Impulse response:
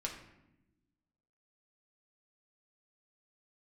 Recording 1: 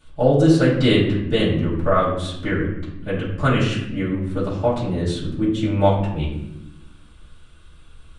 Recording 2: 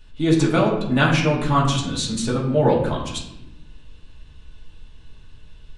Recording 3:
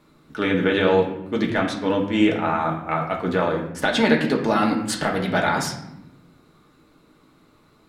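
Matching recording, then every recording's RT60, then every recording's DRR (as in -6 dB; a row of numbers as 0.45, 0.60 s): 3; 0.90, 0.90, 0.95 s; -11.0, -5.5, -1.0 dB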